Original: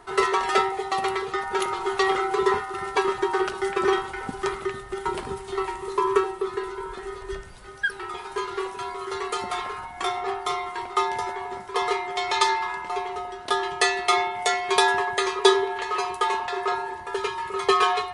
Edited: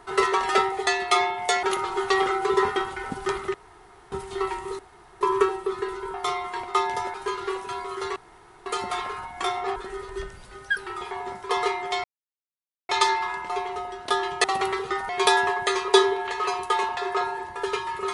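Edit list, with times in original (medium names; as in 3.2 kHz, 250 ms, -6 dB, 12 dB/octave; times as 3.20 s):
0.87–1.52 s: swap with 13.84–14.60 s
2.65–3.93 s: delete
4.71–5.29 s: room tone
5.96 s: insert room tone 0.42 s
6.89–8.24 s: swap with 10.36–11.36 s
9.26 s: insert room tone 0.50 s
12.29 s: insert silence 0.85 s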